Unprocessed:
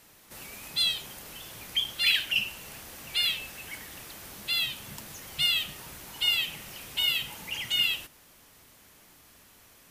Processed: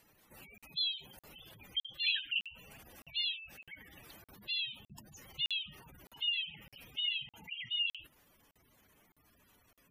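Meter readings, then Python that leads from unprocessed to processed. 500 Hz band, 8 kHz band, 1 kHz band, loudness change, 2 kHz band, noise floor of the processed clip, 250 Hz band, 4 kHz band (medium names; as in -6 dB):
-13.0 dB, -21.0 dB, -15.0 dB, -8.0 dB, -9.0 dB, -74 dBFS, -10.5 dB, -8.0 dB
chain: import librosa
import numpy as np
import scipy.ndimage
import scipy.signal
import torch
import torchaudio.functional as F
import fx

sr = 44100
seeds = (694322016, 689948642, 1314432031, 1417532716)

y = fx.spec_gate(x, sr, threshold_db=-10, keep='strong')
y = fx.buffer_crackle(y, sr, first_s=0.58, period_s=0.61, block=2048, kind='zero')
y = y * librosa.db_to_amplitude(-7.0)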